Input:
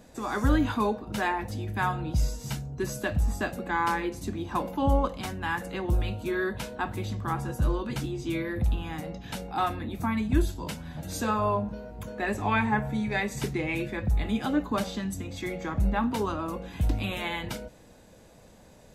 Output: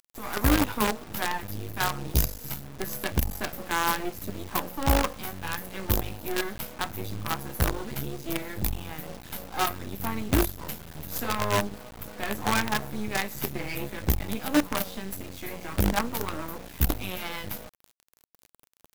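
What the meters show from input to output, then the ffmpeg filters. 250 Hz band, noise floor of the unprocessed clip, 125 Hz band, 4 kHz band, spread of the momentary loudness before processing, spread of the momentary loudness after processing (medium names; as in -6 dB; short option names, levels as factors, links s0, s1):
-1.5 dB, -54 dBFS, -1.5 dB, +5.5 dB, 9 LU, 11 LU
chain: -af "aexciter=amount=14.4:drive=4.8:freq=12000,flanger=delay=9.9:depth=4.3:regen=52:speed=0.69:shape=sinusoidal,acrusher=bits=5:dc=4:mix=0:aa=0.000001,volume=1.68"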